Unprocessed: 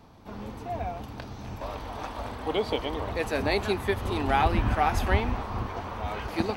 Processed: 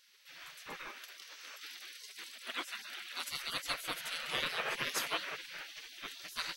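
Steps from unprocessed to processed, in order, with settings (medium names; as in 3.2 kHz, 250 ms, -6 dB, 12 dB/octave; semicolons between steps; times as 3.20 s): spectral gate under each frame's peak -25 dB weak; 0.88–3.31 s: steep high-pass 210 Hz 48 dB/octave; trim +4.5 dB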